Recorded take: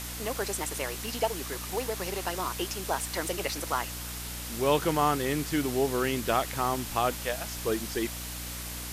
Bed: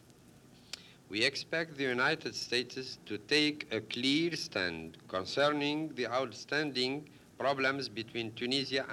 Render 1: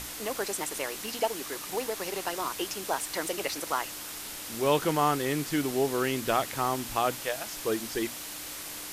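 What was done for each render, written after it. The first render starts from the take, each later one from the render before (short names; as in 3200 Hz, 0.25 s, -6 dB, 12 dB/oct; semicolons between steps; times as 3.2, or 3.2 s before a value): notches 60/120/180/240 Hz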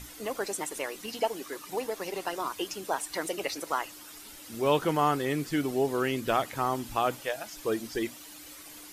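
denoiser 11 dB, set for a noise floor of -40 dBFS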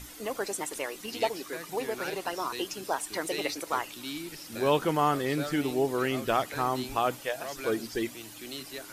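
add bed -8.5 dB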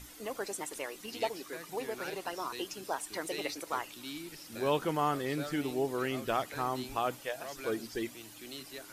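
gain -5 dB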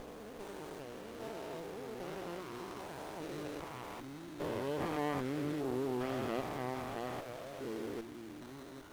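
stepped spectrum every 0.4 s; running maximum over 17 samples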